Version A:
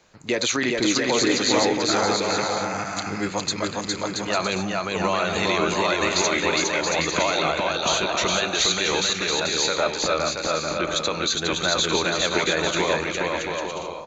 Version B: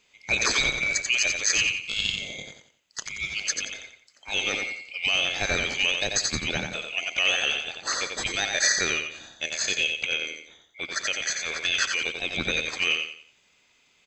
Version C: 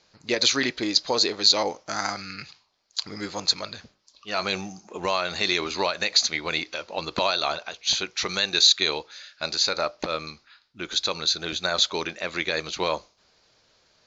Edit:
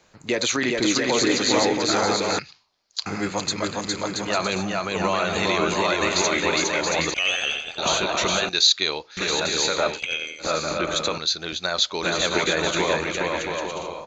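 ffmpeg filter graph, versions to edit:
-filter_complex "[2:a]asplit=3[s0][s1][s2];[1:a]asplit=2[s3][s4];[0:a]asplit=6[s5][s6][s7][s8][s9][s10];[s5]atrim=end=2.392[s11];[s0]atrim=start=2.388:end=3.062[s12];[s6]atrim=start=3.058:end=7.142[s13];[s3]atrim=start=7.138:end=7.782[s14];[s7]atrim=start=7.778:end=8.492[s15];[s1]atrim=start=8.488:end=9.172[s16];[s8]atrim=start=9.168:end=10.01[s17];[s4]atrim=start=9.91:end=10.48[s18];[s9]atrim=start=10.38:end=11.182[s19];[s2]atrim=start=11.178:end=12.032[s20];[s10]atrim=start=12.028[s21];[s11][s12]acrossfade=d=0.004:c1=hsin:c2=hsin[s22];[s22][s13]acrossfade=d=0.004:c1=hsin:c2=hsin[s23];[s23][s14]acrossfade=d=0.004:c1=hsin:c2=hsin[s24];[s24][s15]acrossfade=d=0.004:c1=hsin:c2=hsin[s25];[s25][s16]acrossfade=d=0.004:c1=hsin:c2=hsin[s26];[s26][s17]acrossfade=d=0.004:c1=hsin:c2=hsin[s27];[s27][s18]acrossfade=d=0.1:c1=tri:c2=tri[s28];[s28][s19]acrossfade=d=0.1:c1=tri:c2=tri[s29];[s29][s20]acrossfade=d=0.004:c1=hsin:c2=hsin[s30];[s30][s21]acrossfade=d=0.004:c1=hsin:c2=hsin"

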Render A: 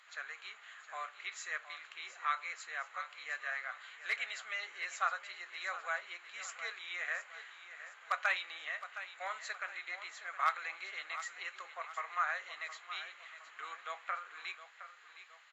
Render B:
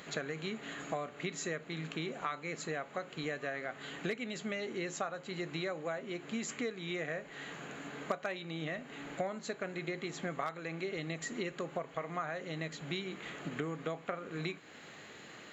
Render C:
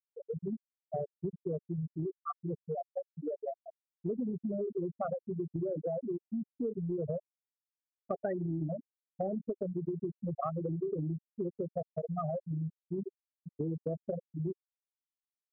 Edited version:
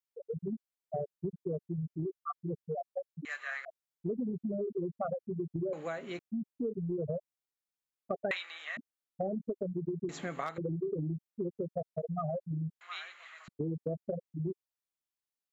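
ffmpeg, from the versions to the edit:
-filter_complex "[0:a]asplit=3[s0][s1][s2];[1:a]asplit=2[s3][s4];[2:a]asplit=6[s5][s6][s7][s8][s9][s10];[s5]atrim=end=3.252[s11];[s0]atrim=start=3.248:end=3.652[s12];[s6]atrim=start=3.648:end=5.732[s13];[s3]atrim=start=5.728:end=6.192[s14];[s7]atrim=start=6.188:end=8.312[s15];[s1]atrim=start=8.308:end=8.772[s16];[s8]atrim=start=8.768:end=10.092[s17];[s4]atrim=start=10.088:end=10.582[s18];[s9]atrim=start=10.578:end=12.812[s19];[s2]atrim=start=12.808:end=13.482[s20];[s10]atrim=start=13.478[s21];[s11][s12]acrossfade=d=0.004:c1=hsin:c2=hsin[s22];[s22][s13]acrossfade=d=0.004:c1=hsin:c2=hsin[s23];[s23][s14]acrossfade=d=0.004:c1=hsin:c2=hsin[s24];[s24][s15]acrossfade=d=0.004:c1=hsin:c2=hsin[s25];[s25][s16]acrossfade=d=0.004:c1=hsin:c2=hsin[s26];[s26][s17]acrossfade=d=0.004:c1=hsin:c2=hsin[s27];[s27][s18]acrossfade=d=0.004:c1=hsin:c2=hsin[s28];[s28][s19]acrossfade=d=0.004:c1=hsin:c2=hsin[s29];[s29][s20]acrossfade=d=0.004:c1=hsin:c2=hsin[s30];[s30][s21]acrossfade=d=0.004:c1=hsin:c2=hsin"

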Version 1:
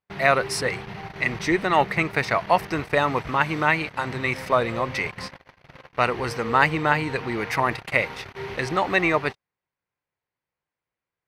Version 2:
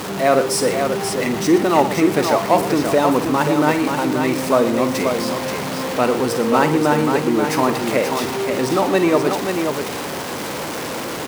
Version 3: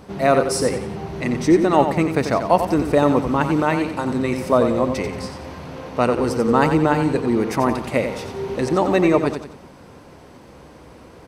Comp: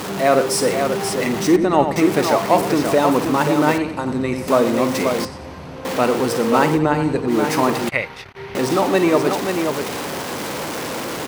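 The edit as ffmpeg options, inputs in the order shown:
-filter_complex "[2:a]asplit=4[s0][s1][s2][s3];[1:a]asplit=6[s4][s5][s6][s7][s8][s9];[s4]atrim=end=1.562[s10];[s0]atrim=start=1.558:end=1.962[s11];[s5]atrim=start=1.958:end=3.782[s12];[s1]atrim=start=3.778:end=4.482[s13];[s6]atrim=start=4.478:end=5.252[s14];[s2]atrim=start=5.248:end=5.852[s15];[s7]atrim=start=5.848:end=6.8[s16];[s3]atrim=start=6.74:end=7.33[s17];[s8]atrim=start=7.27:end=7.892[s18];[0:a]atrim=start=7.888:end=8.552[s19];[s9]atrim=start=8.548[s20];[s10][s11]acrossfade=d=0.004:c1=hsin:c2=hsin[s21];[s21][s12]acrossfade=d=0.004:c1=hsin:c2=hsin[s22];[s22][s13]acrossfade=d=0.004:c1=hsin:c2=hsin[s23];[s23][s14]acrossfade=d=0.004:c1=hsin:c2=hsin[s24];[s24][s15]acrossfade=d=0.004:c1=hsin:c2=hsin[s25];[s25][s16]acrossfade=d=0.004:c1=hsin:c2=hsin[s26];[s26][s17]acrossfade=d=0.06:c1=tri:c2=tri[s27];[s27][s18]acrossfade=d=0.06:c1=tri:c2=tri[s28];[s28][s19]acrossfade=d=0.004:c1=hsin:c2=hsin[s29];[s29][s20]acrossfade=d=0.004:c1=hsin:c2=hsin"

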